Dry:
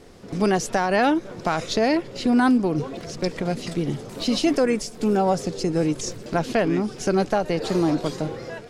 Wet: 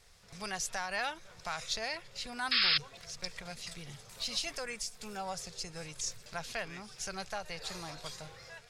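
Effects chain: painted sound noise, 2.51–2.78, 1100–5300 Hz -20 dBFS; passive tone stack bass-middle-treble 10-0-10; notch 3000 Hz, Q 23; gain -4.5 dB

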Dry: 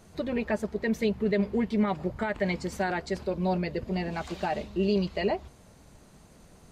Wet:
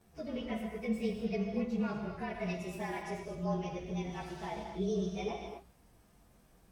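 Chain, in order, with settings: inharmonic rescaling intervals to 109%; non-linear reverb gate 0.28 s flat, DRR 2 dB; gain -8 dB

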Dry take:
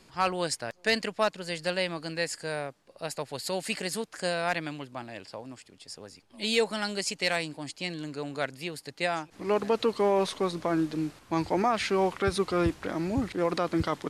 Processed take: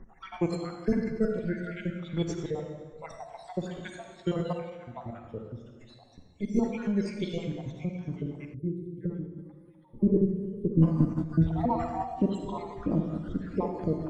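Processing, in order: random spectral dropouts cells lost 73%; on a send at -3 dB: reverb RT60 1.6 s, pre-delay 38 ms; on the sum: spectral gain 8.54–10.83, 600–11000 Hz -28 dB; tilt -4 dB/oct; formant shift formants -4 st; de-hum 49.05 Hz, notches 3

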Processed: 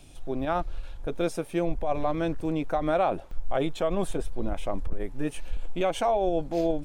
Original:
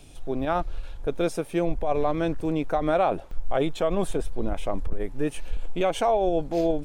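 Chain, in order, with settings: notch 440 Hz, Q 12; gain -2 dB

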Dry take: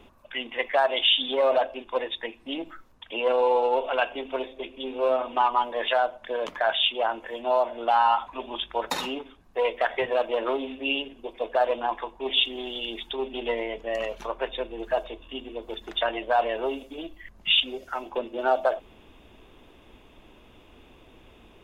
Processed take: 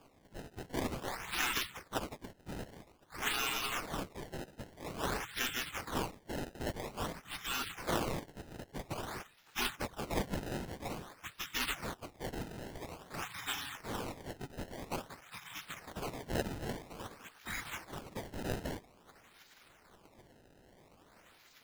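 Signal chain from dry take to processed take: spectral gate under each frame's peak -30 dB weak; bell 580 Hz -14 dB 0.32 oct; in parallel at -9 dB: wrapped overs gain 47 dB; on the sum: decimation with a swept rate 22×, swing 160% 0.5 Hz; gain +10.5 dB

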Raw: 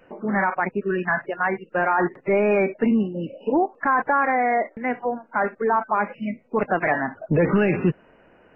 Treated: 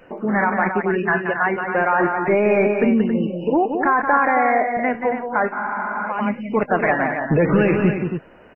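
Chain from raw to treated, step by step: in parallel at 0 dB: compressor, threshold -28 dBFS, peak gain reduction 12.5 dB; on the sum: loudspeakers at several distances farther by 61 m -7 dB, 94 m -8 dB; spectral freeze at 5.55, 0.52 s

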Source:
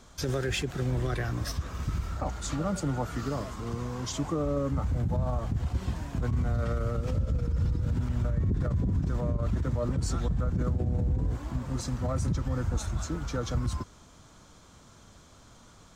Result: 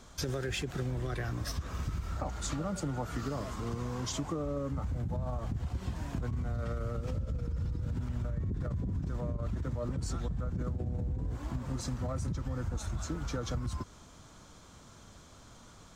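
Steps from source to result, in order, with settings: compressor, threshold -31 dBFS, peak gain reduction 8 dB

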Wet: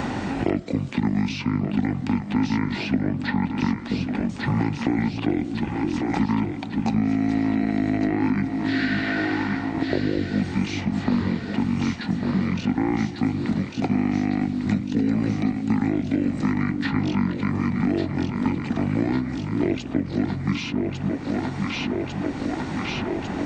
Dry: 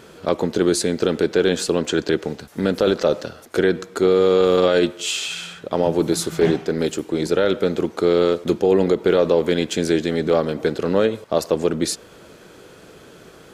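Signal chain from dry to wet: split-band echo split 550 Hz, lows 0.323 s, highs 0.663 s, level -8.5 dB; speed mistake 78 rpm record played at 45 rpm; three-band squash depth 100%; gain -6 dB

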